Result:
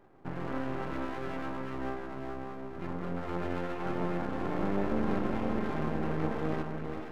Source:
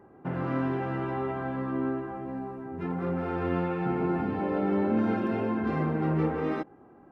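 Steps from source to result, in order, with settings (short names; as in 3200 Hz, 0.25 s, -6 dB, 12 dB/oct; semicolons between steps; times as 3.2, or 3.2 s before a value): diffused feedback echo 0.453 s, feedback 48%, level -5 dB; half-wave rectifier; gain -2 dB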